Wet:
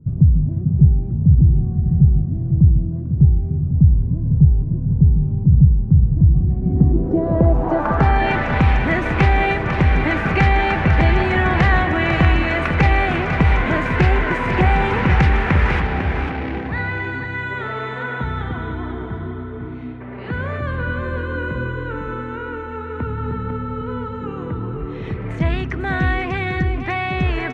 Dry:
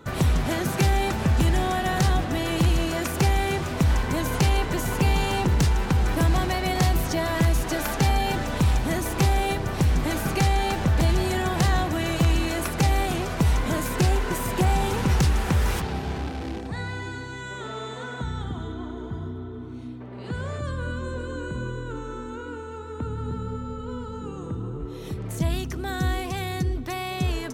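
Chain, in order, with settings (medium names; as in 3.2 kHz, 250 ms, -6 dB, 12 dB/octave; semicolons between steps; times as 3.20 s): low-pass sweep 140 Hz -> 2.1 kHz, 6.39–8.32 s; delay 499 ms -8.5 dB; trim +5.5 dB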